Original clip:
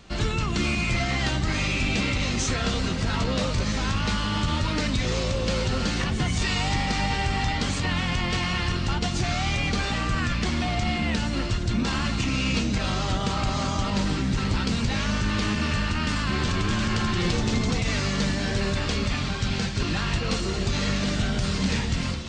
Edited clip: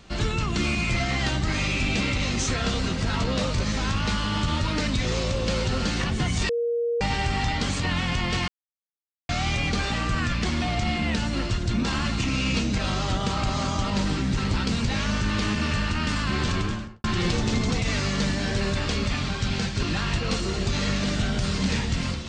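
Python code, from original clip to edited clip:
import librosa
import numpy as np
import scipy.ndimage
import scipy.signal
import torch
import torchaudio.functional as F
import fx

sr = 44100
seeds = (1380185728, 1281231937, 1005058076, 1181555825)

y = fx.studio_fade_out(x, sr, start_s=16.53, length_s=0.51)
y = fx.edit(y, sr, fx.bleep(start_s=6.49, length_s=0.52, hz=471.0, db=-22.0),
    fx.silence(start_s=8.48, length_s=0.81), tone=tone)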